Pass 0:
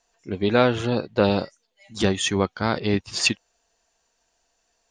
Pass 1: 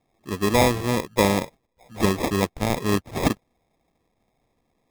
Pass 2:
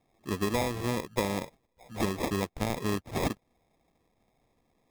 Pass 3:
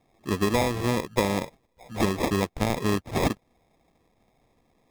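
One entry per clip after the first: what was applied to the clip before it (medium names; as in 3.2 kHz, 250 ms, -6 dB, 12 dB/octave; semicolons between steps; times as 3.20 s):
sample-and-hold 30×
compression 6:1, threshold -25 dBFS, peak gain reduction 12 dB; trim -1 dB
treble shelf 8.5 kHz -3.5 dB; trim +5.5 dB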